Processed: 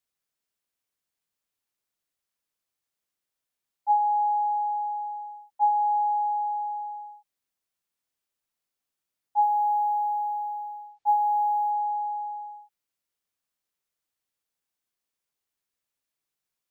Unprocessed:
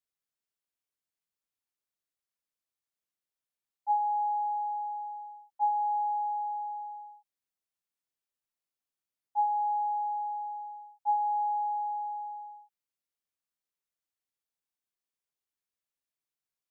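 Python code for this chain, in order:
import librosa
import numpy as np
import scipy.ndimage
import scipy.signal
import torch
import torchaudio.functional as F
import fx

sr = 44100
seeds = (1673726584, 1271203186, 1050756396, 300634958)

y = fx.resample_linear(x, sr, factor=3, at=(9.42, 11.71))
y = y * 10.0 ** (5.5 / 20.0)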